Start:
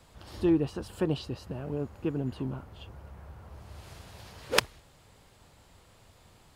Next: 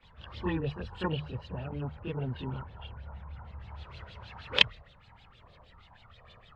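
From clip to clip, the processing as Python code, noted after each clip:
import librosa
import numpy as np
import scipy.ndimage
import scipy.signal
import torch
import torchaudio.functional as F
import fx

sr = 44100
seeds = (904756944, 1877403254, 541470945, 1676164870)

y = fx.hum_notches(x, sr, base_hz=50, count=3)
y = fx.filter_lfo_lowpass(y, sr, shape='sine', hz=6.4, low_hz=970.0, high_hz=3800.0, q=5.3)
y = fx.chorus_voices(y, sr, voices=6, hz=0.33, base_ms=27, depth_ms=1.2, mix_pct=70)
y = y * librosa.db_to_amplitude(-1.0)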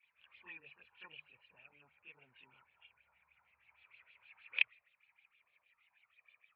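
y = fx.bandpass_q(x, sr, hz=2400.0, q=12.0)
y = fx.air_absorb(y, sr, metres=270.0)
y = y * librosa.db_to_amplitude(4.5)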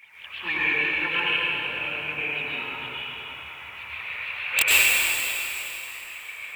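y = fx.fold_sine(x, sr, drive_db=19, ceiling_db=-12.5)
y = fx.wow_flutter(y, sr, seeds[0], rate_hz=2.1, depth_cents=110.0)
y = fx.rev_plate(y, sr, seeds[1], rt60_s=3.3, hf_ratio=1.0, predelay_ms=85, drr_db=-9.0)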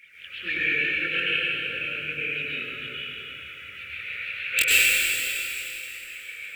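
y = scipy.signal.sosfilt(scipy.signal.ellip(3, 1.0, 60, [540.0, 1400.0], 'bandstop', fs=sr, output='sos'), x)
y = fx.high_shelf(y, sr, hz=11000.0, db=-4.0)
y = fx.doubler(y, sr, ms=21.0, db=-10)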